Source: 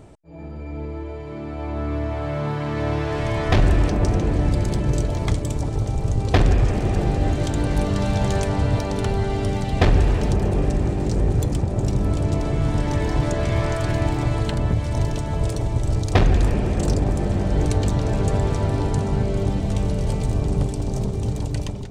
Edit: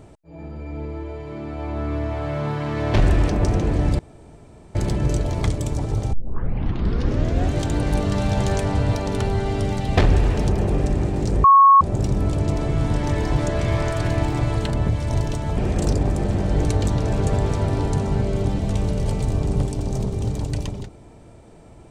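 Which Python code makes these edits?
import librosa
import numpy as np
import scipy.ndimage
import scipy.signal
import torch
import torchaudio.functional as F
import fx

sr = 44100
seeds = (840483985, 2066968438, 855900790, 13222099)

y = fx.edit(x, sr, fx.cut(start_s=2.94, length_s=0.6),
    fx.insert_room_tone(at_s=4.59, length_s=0.76),
    fx.tape_start(start_s=5.97, length_s=1.39),
    fx.bleep(start_s=11.28, length_s=0.37, hz=1100.0, db=-7.5),
    fx.cut(start_s=15.41, length_s=1.17), tone=tone)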